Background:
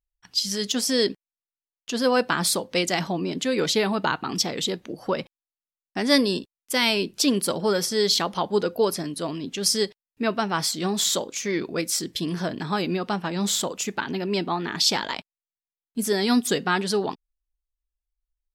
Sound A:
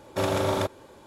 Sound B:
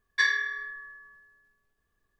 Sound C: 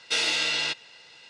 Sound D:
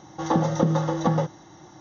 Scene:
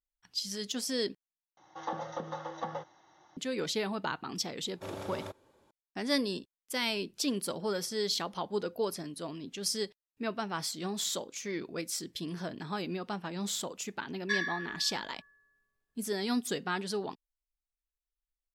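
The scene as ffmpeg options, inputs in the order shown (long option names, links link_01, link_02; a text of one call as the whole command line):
ffmpeg -i bed.wav -i cue0.wav -i cue1.wav -i cue2.wav -i cue3.wav -filter_complex "[0:a]volume=-10.5dB[link_01];[4:a]acrossover=split=510 5100:gain=0.158 1 0.158[link_02][link_03][link_04];[link_02][link_03][link_04]amix=inputs=3:normalize=0[link_05];[link_01]asplit=2[link_06][link_07];[link_06]atrim=end=1.574[link_08];[link_05]atrim=end=1.8,asetpts=PTS-STARTPTS,volume=-9.5dB[link_09];[link_07]atrim=start=3.366[link_10];[1:a]atrim=end=1.06,asetpts=PTS-STARTPTS,volume=-16dB,afade=type=in:duration=0.004:curve=hsin,afade=type=out:start_time=1.056:duration=0.004:curve=hsin,adelay=205065S[link_11];[2:a]atrim=end=2.19,asetpts=PTS-STARTPTS,volume=-7.5dB,afade=type=in:duration=0.004:curve=hsin,afade=type=out:start_time=2.186:duration=0.004:curve=hsin,adelay=14110[link_12];[link_08][link_09]acrossfade=duration=0.004:curve1=hsin:curve2=hsin[link_13];[link_13][link_10]acrossfade=duration=0.004:curve1=hsin:curve2=hsin[link_14];[link_14][link_11][link_12]amix=inputs=3:normalize=0" out.wav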